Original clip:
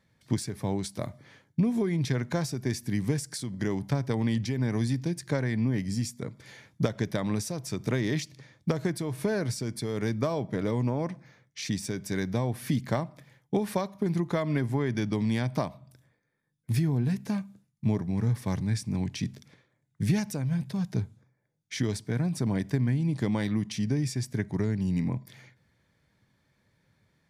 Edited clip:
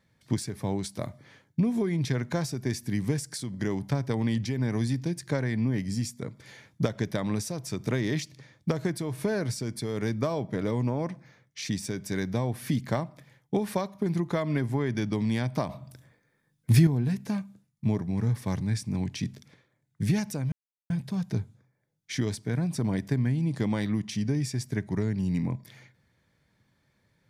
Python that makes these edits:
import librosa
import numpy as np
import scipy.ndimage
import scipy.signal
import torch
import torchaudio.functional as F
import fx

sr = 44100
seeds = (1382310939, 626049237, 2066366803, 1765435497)

y = fx.edit(x, sr, fx.clip_gain(start_s=15.69, length_s=1.18, db=7.5),
    fx.insert_silence(at_s=20.52, length_s=0.38), tone=tone)